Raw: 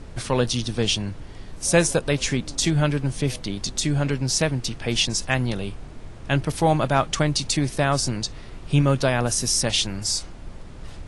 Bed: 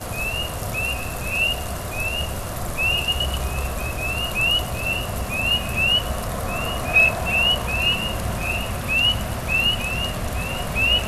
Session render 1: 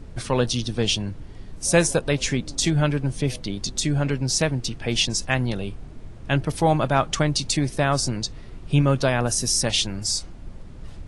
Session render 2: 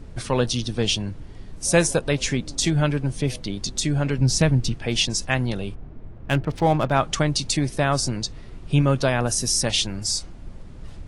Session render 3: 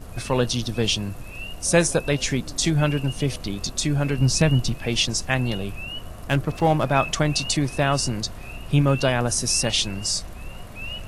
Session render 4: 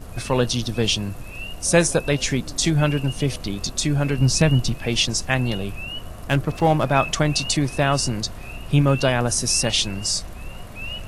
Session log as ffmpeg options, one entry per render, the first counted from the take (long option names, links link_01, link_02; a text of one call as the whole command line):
ffmpeg -i in.wav -af "afftdn=noise_reduction=6:noise_floor=-40" out.wav
ffmpeg -i in.wav -filter_complex "[0:a]asettb=1/sr,asplit=3[link_01][link_02][link_03];[link_01]atrim=end=4.184[link_04];[link_02]atrim=start=4.18:end=4.74,asetpts=PTS-STARTPTS,afade=type=in:duration=0.004:curve=qsin,afade=type=out:start_time=0.556:duration=0.004:curve=qsin,bass=frequency=250:gain=8,treble=frequency=4000:gain=-1[link_05];[link_03]atrim=start=4.736[link_06];[link_04][link_05]acrossfade=duration=0.004:curve1=hsin:curve2=qsin[link_07];[link_07][link_06]acrossfade=duration=0.004:curve1=qsin:curve2=hsin,asplit=3[link_08][link_09][link_10];[link_08]afade=type=out:start_time=5.74:duration=0.02[link_11];[link_09]adynamicsmooth=sensitivity=6:basefreq=1800,afade=type=in:start_time=5.74:duration=0.02,afade=type=out:start_time=6.91:duration=0.02[link_12];[link_10]afade=type=in:start_time=6.91:duration=0.02[link_13];[link_11][link_12][link_13]amix=inputs=3:normalize=0" out.wav
ffmpeg -i in.wav -i bed.wav -filter_complex "[1:a]volume=-16dB[link_01];[0:a][link_01]amix=inputs=2:normalize=0" out.wav
ffmpeg -i in.wav -af "volume=1.5dB" out.wav